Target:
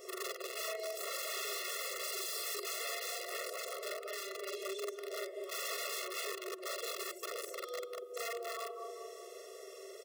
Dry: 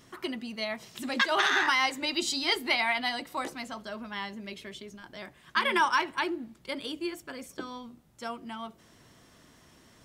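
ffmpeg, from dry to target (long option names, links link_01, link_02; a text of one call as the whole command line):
ffmpeg -i in.wav -filter_complex "[0:a]afftfilt=real='re':imag='-im':win_size=4096:overlap=0.75,equalizer=frequency=100:width_type=o:width=0.67:gain=-4,equalizer=frequency=400:width_type=o:width=0.67:gain=8,equalizer=frequency=1600:width_type=o:width=0.67:gain=-11,equalizer=frequency=4000:width_type=o:width=0.67:gain=-5,acontrast=34,asplit=2[link_01][link_02];[link_02]adelay=195,lowpass=frequency=1200:poles=1,volume=-7dB,asplit=2[link_03][link_04];[link_04]adelay=195,lowpass=frequency=1200:poles=1,volume=0.52,asplit=2[link_05][link_06];[link_06]adelay=195,lowpass=frequency=1200:poles=1,volume=0.52,asplit=2[link_07][link_08];[link_08]adelay=195,lowpass=frequency=1200:poles=1,volume=0.52,asplit=2[link_09][link_10];[link_10]adelay=195,lowpass=frequency=1200:poles=1,volume=0.52,asplit=2[link_11][link_12];[link_12]adelay=195,lowpass=frequency=1200:poles=1,volume=0.52[link_13];[link_03][link_05][link_07][link_09][link_11][link_13]amix=inputs=6:normalize=0[link_14];[link_01][link_14]amix=inputs=2:normalize=0,adynamicequalizer=threshold=0.00316:dfrequency=4600:dqfactor=2:tfrequency=4600:tqfactor=2:attack=5:release=100:ratio=0.375:range=3:mode=boostabove:tftype=bell,bandreject=frequency=60:width_type=h:width=6,bandreject=frequency=120:width_type=h:width=6,bandreject=frequency=180:width_type=h:width=6,bandreject=frequency=240:width_type=h:width=6,bandreject=frequency=300:width_type=h:width=6,bandreject=frequency=360:width_type=h:width=6,bandreject=frequency=420:width_type=h:width=6,acompressor=threshold=-47dB:ratio=3,aeval=exprs='(mod(106*val(0)+1,2)-1)/106':channel_layout=same,afftfilt=real='re*eq(mod(floor(b*sr/1024/360),2),1)':imag='im*eq(mod(floor(b*sr/1024/360),2),1)':win_size=1024:overlap=0.75,volume=9.5dB" out.wav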